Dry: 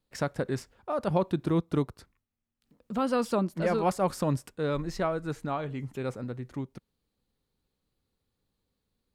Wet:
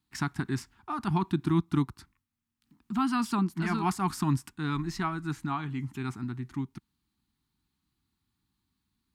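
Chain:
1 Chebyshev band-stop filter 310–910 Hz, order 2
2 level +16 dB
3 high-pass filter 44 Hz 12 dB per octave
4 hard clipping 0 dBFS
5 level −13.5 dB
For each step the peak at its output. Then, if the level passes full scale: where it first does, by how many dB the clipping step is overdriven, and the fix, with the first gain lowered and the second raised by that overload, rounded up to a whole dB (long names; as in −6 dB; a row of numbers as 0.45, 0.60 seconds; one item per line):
−17.5, −1.5, −2.0, −2.0, −15.5 dBFS
no step passes full scale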